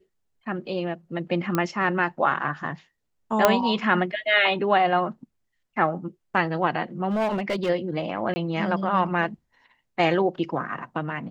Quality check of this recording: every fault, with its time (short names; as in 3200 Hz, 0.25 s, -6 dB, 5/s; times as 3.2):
1.55 pop -10 dBFS
3.45 pop -2 dBFS
7.08–7.7 clipped -20.5 dBFS
8.34–8.36 gap 20 ms